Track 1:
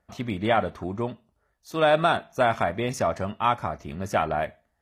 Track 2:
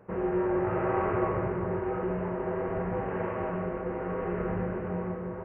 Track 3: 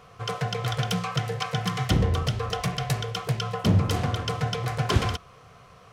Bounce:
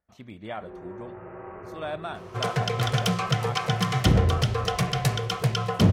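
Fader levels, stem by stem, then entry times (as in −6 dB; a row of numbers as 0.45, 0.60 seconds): −13.5, −13.0, +2.5 decibels; 0.00, 0.50, 2.15 seconds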